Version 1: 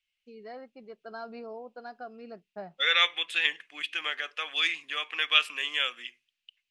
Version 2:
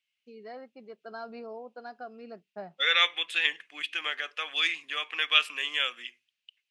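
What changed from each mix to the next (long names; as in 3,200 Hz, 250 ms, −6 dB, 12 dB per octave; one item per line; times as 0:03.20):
master: add high-pass filter 130 Hz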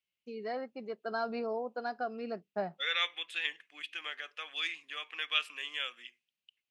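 first voice +6.0 dB
second voice −8.5 dB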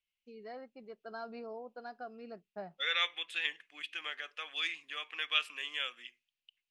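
first voice −9.0 dB
master: remove high-pass filter 130 Hz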